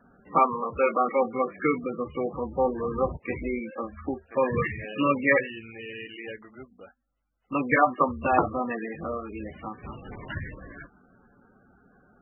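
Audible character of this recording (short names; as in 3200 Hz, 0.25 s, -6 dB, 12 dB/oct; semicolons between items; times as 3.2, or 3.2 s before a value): MP3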